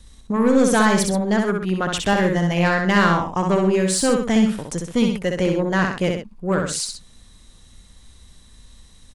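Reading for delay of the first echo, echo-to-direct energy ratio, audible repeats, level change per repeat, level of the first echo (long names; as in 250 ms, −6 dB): 64 ms, −3.0 dB, 2, −7.0 dB, −4.0 dB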